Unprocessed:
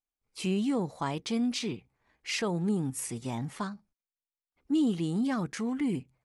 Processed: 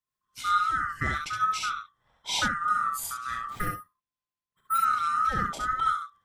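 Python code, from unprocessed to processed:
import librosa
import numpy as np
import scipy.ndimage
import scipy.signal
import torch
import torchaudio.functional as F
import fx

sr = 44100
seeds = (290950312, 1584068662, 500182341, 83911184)

p1 = fx.band_swap(x, sr, width_hz=1000)
p2 = fx.resample_bad(p1, sr, factor=4, down='filtered', up='hold', at=(3.5, 4.78))
p3 = fx.bass_treble(p2, sr, bass_db=8, treble_db=-1)
p4 = p3 + fx.room_early_taps(p3, sr, ms=(36, 67), db=(-10.5, -3.5), dry=0)
p5 = fx.am_noise(p4, sr, seeds[0], hz=5.7, depth_pct=55)
y = p5 * librosa.db_to_amplitude(3.5)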